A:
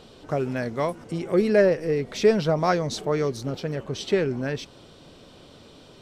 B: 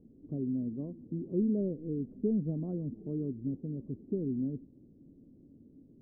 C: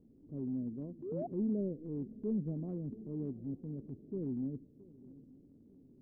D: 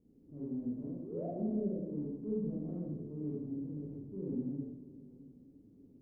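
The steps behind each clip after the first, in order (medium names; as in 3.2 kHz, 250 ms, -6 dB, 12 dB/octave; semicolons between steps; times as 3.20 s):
four-pole ladder low-pass 310 Hz, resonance 55%
shuffle delay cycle 897 ms, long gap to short 3:1, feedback 34%, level -21 dB; painted sound rise, 1.02–1.27 s, 330–740 Hz -35 dBFS; transient shaper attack -6 dB, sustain -1 dB; trim -3.5 dB
reverberation RT60 1.1 s, pre-delay 28 ms, DRR -6 dB; trim -7.5 dB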